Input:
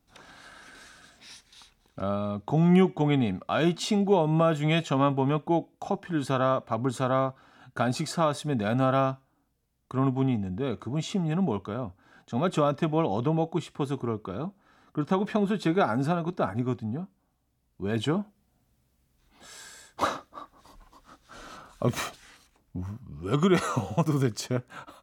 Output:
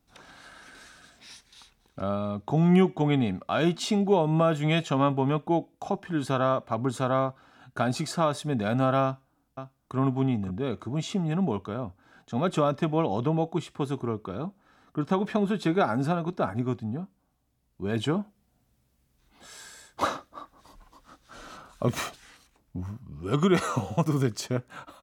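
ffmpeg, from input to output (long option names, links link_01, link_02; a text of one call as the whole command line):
ffmpeg -i in.wav -filter_complex "[0:a]asplit=2[link_01][link_02];[link_02]afade=type=in:start_time=9.04:duration=0.01,afade=type=out:start_time=9.97:duration=0.01,aecho=0:1:530|1060:0.316228|0.0316228[link_03];[link_01][link_03]amix=inputs=2:normalize=0" out.wav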